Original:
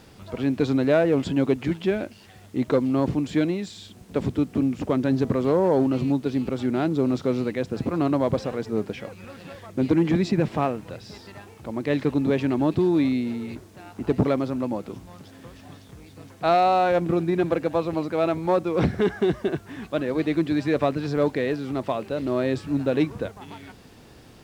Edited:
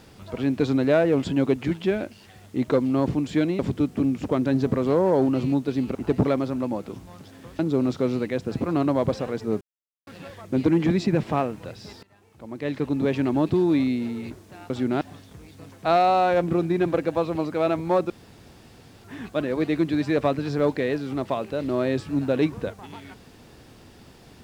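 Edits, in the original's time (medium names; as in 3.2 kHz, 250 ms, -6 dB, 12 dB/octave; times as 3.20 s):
3.59–4.17 s: delete
6.53–6.84 s: swap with 13.95–15.59 s
8.86–9.32 s: mute
11.28–12.46 s: fade in, from -21.5 dB
18.68–19.62 s: room tone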